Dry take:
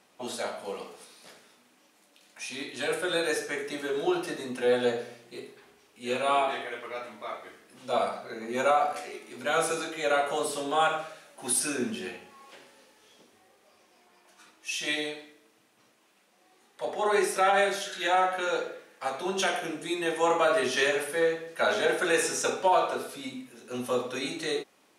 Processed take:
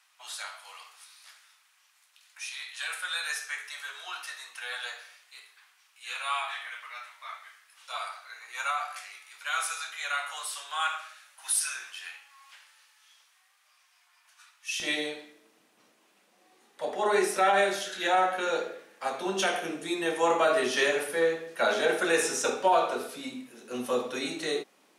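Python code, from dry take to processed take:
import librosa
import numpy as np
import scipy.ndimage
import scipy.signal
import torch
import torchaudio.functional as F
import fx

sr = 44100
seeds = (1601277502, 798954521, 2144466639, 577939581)

y = fx.highpass(x, sr, hz=fx.steps((0.0, 1100.0), (14.8, 150.0)), slope=24)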